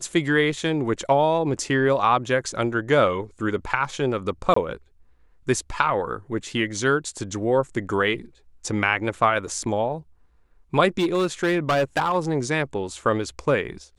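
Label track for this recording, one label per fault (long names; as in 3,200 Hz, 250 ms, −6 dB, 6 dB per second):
4.540000	4.560000	drop-out 24 ms
10.990000	12.160000	clipping −16.5 dBFS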